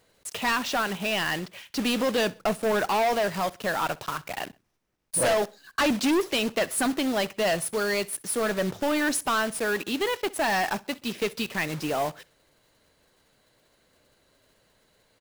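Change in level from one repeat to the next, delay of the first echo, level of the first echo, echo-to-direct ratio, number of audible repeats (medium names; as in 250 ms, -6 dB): -9.0 dB, 64 ms, -23.0 dB, -22.5 dB, 2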